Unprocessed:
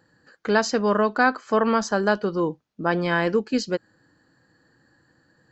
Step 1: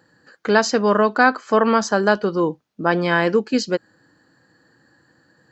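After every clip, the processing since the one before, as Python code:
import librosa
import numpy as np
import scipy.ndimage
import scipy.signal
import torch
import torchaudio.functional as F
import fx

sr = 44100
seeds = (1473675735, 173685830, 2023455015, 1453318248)

y = fx.highpass(x, sr, hz=120.0, slope=6)
y = y * librosa.db_to_amplitude(4.5)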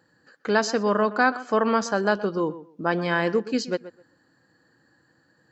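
y = fx.echo_tape(x, sr, ms=126, feedback_pct=21, wet_db=-14, lp_hz=2000.0, drive_db=3.0, wow_cents=32)
y = y * librosa.db_to_amplitude(-5.5)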